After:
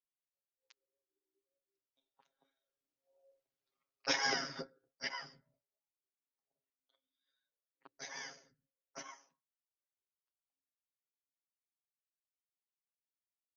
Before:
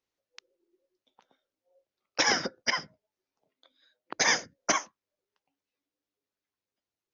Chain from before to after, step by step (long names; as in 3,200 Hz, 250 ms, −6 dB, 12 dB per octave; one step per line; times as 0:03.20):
source passing by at 0:01.81, 10 m/s, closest 2.9 metres
time stretch by overlap-add 1.9×, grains 31 ms
level −3.5 dB